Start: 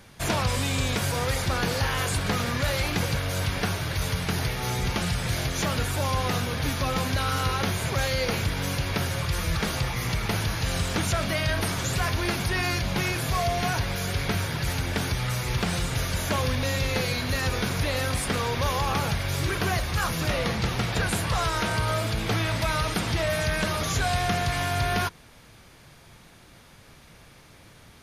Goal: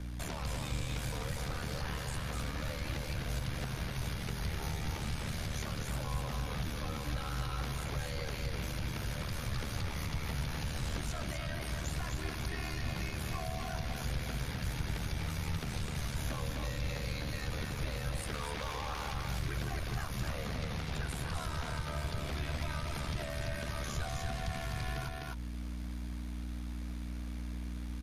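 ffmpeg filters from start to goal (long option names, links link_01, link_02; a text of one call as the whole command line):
ffmpeg -i in.wav -filter_complex "[0:a]asettb=1/sr,asplit=3[link_01][link_02][link_03];[link_01]atrim=end=18.344[link_04];[link_02]atrim=start=18.34:end=19.14,asetpts=PTS-STARTPTS,afade=type=in:duration=0.004:curve=qsin,afade=type=out:start_time=0.796:duration=0.004:curve=qsin,asplit=2[link_05][link_06];[link_06]highpass=frequency=720:poles=1,volume=13dB,asoftclip=type=tanh:threshold=-15.5dB[link_07];[link_05][link_07]amix=inputs=2:normalize=0,lowpass=frequency=6000:poles=1,volume=-6dB[link_08];[link_03]atrim=start=19.136[link_09];[link_04][link_08]acrossfade=duration=0.004:curve1=hsin:curve2=qsin[link_10];[link_10][link_09]acrossfade=duration=0.004:curve1=qsin:curve2=hsin,aeval=exprs='val(0)*sin(2*PI*37*n/s)':channel_layout=same,aeval=exprs='val(0)+0.0112*(sin(2*PI*60*n/s)+sin(2*PI*2*60*n/s)/2+sin(2*PI*3*60*n/s)/3+sin(2*PI*4*60*n/s)/4+sin(2*PI*5*60*n/s)/5)':channel_layout=same,alimiter=limit=-24dB:level=0:latency=1:release=325,asplit=2[link_11][link_12];[link_12]aecho=0:1:254:0.631[link_13];[link_11][link_13]amix=inputs=2:normalize=0,acrossover=split=120[link_14][link_15];[link_15]acompressor=threshold=-43dB:ratio=2[link_16];[link_14][link_16]amix=inputs=2:normalize=0" out.wav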